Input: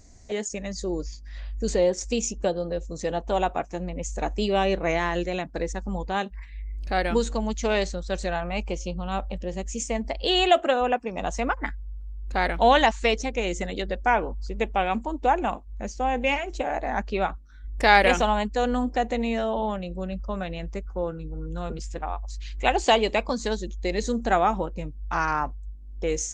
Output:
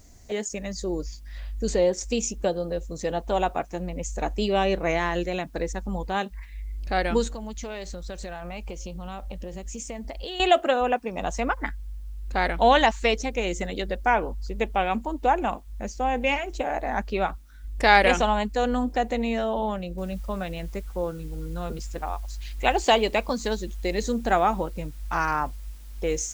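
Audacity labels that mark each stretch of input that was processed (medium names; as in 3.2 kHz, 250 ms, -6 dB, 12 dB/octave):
7.270000	10.400000	compression 8:1, threshold -31 dBFS
19.980000	19.980000	noise floor step -67 dB -56 dB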